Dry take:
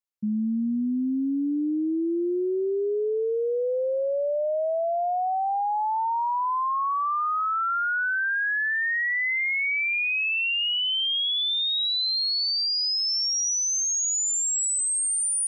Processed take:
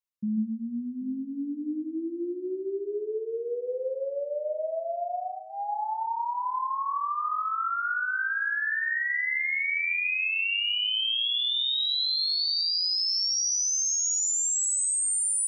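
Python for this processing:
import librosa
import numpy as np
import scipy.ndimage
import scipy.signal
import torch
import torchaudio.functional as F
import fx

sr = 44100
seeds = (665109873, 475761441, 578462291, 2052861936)

p1 = fx.notch(x, sr, hz=780.0, q=12.0)
p2 = fx.dereverb_blind(p1, sr, rt60_s=1.8)
p3 = p2 + fx.echo_multitap(p2, sr, ms=(46, 134, 144, 785), db=(-10.5, -18.5, -6.5, -16.5), dry=0)
y = F.gain(torch.from_numpy(p3), -2.5).numpy()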